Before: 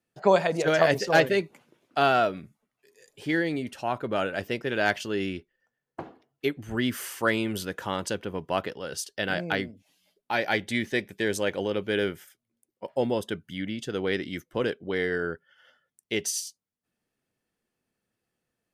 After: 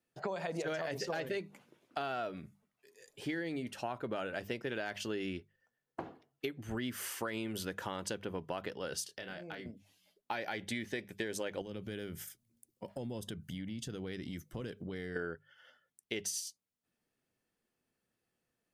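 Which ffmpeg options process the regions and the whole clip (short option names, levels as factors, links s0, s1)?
-filter_complex "[0:a]asettb=1/sr,asplit=3[s0][s1][s2];[s0]atrim=end=9.064[s3];[s1]atrim=start=9.06:end=9.66,asetpts=PTS-STARTPTS,afade=t=in:d=0.004:c=qsin,afade=t=out:st=0.596:d=0.004:c=qsin,acompressor=threshold=0.01:ratio=5:attack=3.2:release=140:knee=1:detection=peak,asplit=2[s4][s5];[s5]adelay=26,volume=0.447[s6];[s4][s6]amix=inputs=2:normalize=0,atrim=end_sample=26460[s7];[s2]atrim=start=9.656[s8];[s3][s7]acrossfade=d=0.004:c1=hsin:c2=qsin[s9];[s9][s8]acrossfade=d=0.004:c1=qsin:c2=hsin,asettb=1/sr,asplit=3[s10][s11][s12];[s10]atrim=end=11.614[s13];[s11]atrim=start=11.61:end=15.16,asetpts=PTS-STARTPTS,afade=t=in:d=0.004:c=qsin,afade=t=out:st=3.546:d=0.004:c=qsin,bass=f=250:g=13,treble=f=4000:g=9,acompressor=threshold=0.0158:ratio=5:attack=3.2:release=140:knee=1:detection=peak[s14];[s12]atrim=start=15.156[s15];[s13][s14]acrossfade=d=0.004:c1=hsin:c2=qsin[s16];[s16][s15]acrossfade=d=0.004:c1=qsin:c2=hsin,bandreject=f=50:t=h:w=6,bandreject=f=100:t=h:w=6,bandreject=f=150:t=h:w=6,bandreject=f=200:t=h:w=6,alimiter=limit=0.141:level=0:latency=1:release=73,acompressor=threshold=0.0251:ratio=6,volume=0.75"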